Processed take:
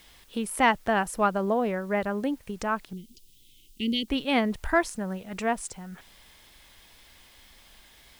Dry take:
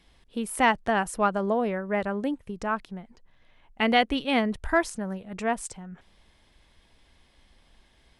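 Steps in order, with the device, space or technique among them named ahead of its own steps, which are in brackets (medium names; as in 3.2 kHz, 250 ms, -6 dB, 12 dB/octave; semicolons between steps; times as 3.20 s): noise-reduction cassette on a plain deck (tape noise reduction on one side only encoder only; wow and flutter 24 cents; white noise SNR 32 dB); 2.93–4.08 s: elliptic band-stop 370–3000 Hz, stop band 40 dB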